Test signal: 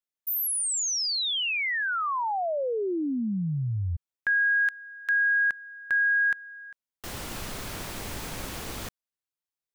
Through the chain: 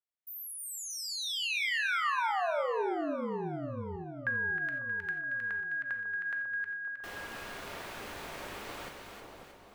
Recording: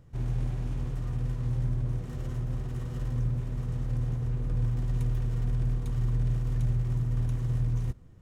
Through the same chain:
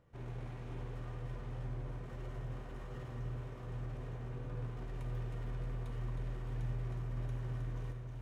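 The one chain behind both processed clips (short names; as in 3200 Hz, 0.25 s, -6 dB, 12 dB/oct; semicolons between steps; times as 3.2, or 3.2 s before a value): tone controls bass -12 dB, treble -11 dB; on a send: split-band echo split 1100 Hz, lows 0.548 s, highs 0.314 s, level -5 dB; on the sum: non-linear reverb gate 0.11 s flat, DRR 6 dB; gain -4.5 dB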